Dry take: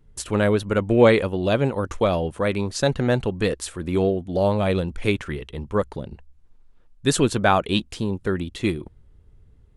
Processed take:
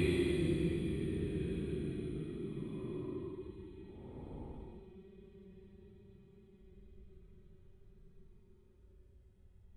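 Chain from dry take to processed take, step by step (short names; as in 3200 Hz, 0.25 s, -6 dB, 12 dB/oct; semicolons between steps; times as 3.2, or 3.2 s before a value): de-hum 191.2 Hz, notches 23; Paulstretch 26×, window 0.05 s, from 8.7; gain -9 dB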